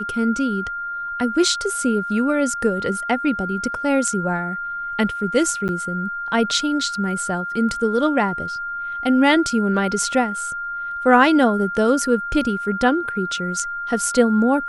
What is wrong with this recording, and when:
whistle 1,400 Hz −25 dBFS
0:05.68–0:05.69: drop-out 9.4 ms

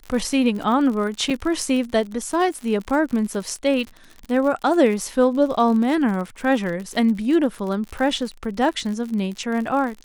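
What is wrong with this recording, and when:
surface crackle 62 per second −28 dBFS
0:01.30–0:01.31: drop-out 5.2 ms

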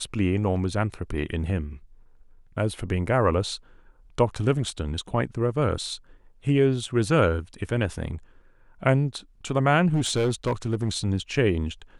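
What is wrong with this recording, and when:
0:09.88–0:10.89: clipping −18.5 dBFS

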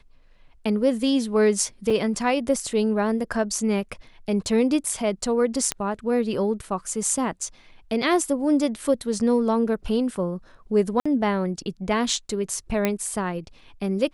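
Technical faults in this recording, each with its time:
0:01.90: drop-out 4.7 ms
0:05.72: click −7 dBFS
0:11.00–0:11.05: drop-out 55 ms
0:12.85: click −8 dBFS

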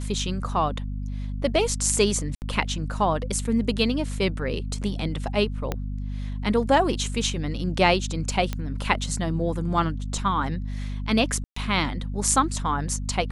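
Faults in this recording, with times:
mains hum 50 Hz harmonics 5 −30 dBFS
0:02.35–0:02.42: drop-out 69 ms
0:05.72: click −12 dBFS
0:08.53: click −14 dBFS
0:11.44–0:11.56: drop-out 124 ms

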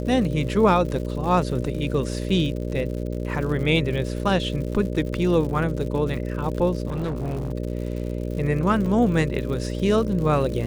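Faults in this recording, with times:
mains buzz 60 Hz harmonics 10 −28 dBFS
surface crackle 130 per second −32 dBFS
0:06.87–0:07.52: clipping −23 dBFS
0:08.86: drop-out 4 ms

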